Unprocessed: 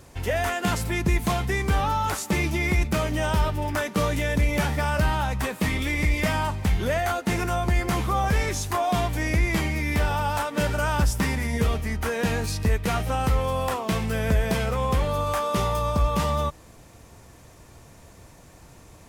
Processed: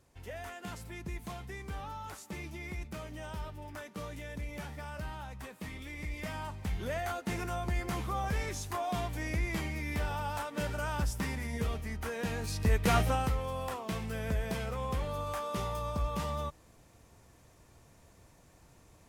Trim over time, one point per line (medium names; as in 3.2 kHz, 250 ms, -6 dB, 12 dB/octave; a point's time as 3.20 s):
5.88 s -18 dB
6.99 s -10.5 dB
12.36 s -10.5 dB
12.99 s 0 dB
13.37 s -11 dB